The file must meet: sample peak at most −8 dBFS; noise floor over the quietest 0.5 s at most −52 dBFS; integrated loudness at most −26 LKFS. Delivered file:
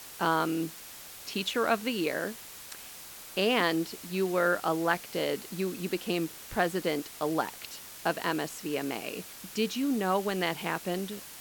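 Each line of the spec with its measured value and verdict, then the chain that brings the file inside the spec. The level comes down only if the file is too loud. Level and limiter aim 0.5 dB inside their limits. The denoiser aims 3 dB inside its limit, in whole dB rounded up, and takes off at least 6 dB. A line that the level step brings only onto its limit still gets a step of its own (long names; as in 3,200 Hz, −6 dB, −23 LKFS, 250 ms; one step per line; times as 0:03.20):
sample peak −12.5 dBFS: in spec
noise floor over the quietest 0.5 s −46 dBFS: out of spec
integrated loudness −30.5 LKFS: in spec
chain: broadband denoise 9 dB, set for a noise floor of −46 dBFS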